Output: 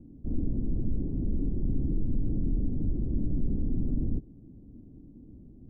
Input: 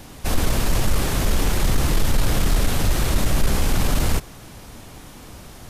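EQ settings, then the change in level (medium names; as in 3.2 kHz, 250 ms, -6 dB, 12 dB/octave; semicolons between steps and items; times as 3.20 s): four-pole ladder low-pass 330 Hz, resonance 50%; distance through air 410 m; 0.0 dB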